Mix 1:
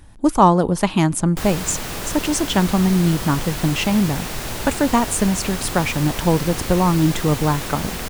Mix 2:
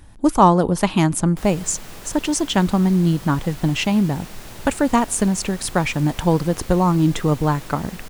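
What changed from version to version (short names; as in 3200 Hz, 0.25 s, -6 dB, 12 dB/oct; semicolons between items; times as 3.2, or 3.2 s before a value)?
background -11.0 dB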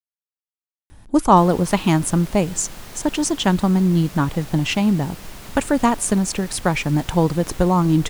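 speech: entry +0.90 s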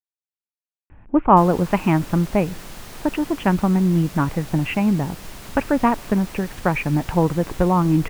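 speech: add elliptic low-pass 2600 Hz, stop band 50 dB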